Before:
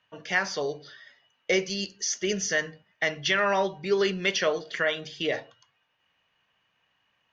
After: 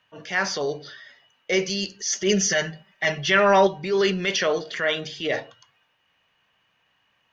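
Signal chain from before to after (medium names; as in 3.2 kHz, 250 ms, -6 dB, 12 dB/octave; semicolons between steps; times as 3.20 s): 2.08–3.67 s: comb 5.2 ms, depth 83%; transient shaper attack -7 dB, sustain +2 dB; trim +4.5 dB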